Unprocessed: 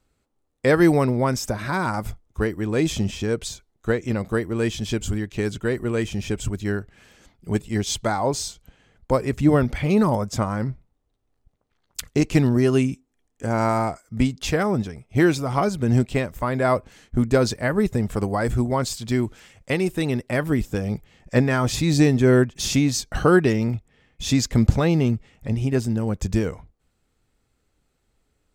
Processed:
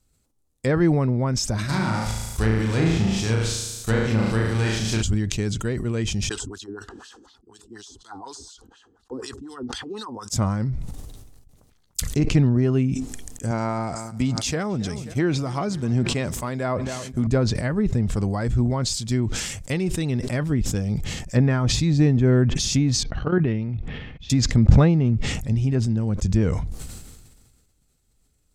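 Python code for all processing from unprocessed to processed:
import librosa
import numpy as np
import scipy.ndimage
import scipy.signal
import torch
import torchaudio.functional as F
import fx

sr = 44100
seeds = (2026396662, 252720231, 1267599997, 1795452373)

y = fx.envelope_flatten(x, sr, power=0.6, at=(1.68, 5.01), fade=0.02)
y = fx.room_flutter(y, sr, wall_m=6.2, rt60_s=0.79, at=(1.68, 5.01), fade=0.02)
y = fx.chain(y, sr, fx.lowpass(hz=10000.0, slope=12),
    fx.wah_lfo(hz=4.1, low_hz=270.0, high_hz=3700.0, q=2.6),
    fx.fixed_phaser(hz=600.0, stages=6), at=(6.29, 10.3))
y = fx.chain(y, sr, fx.highpass(hz=190.0, slope=6),
    fx.echo_feedback(ms=267, feedback_pct=47, wet_db=-22.5), at=(13.51, 17.27))
y = fx.chain(y, sr, fx.lowpass(hz=3400.0, slope=24),
    fx.level_steps(step_db=14), at=(23.03, 24.3))
y = fx.env_lowpass_down(y, sr, base_hz=2100.0, full_db=-15.5)
y = fx.bass_treble(y, sr, bass_db=9, treble_db=14)
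y = fx.sustainer(y, sr, db_per_s=36.0)
y = y * librosa.db_to_amplitude(-6.5)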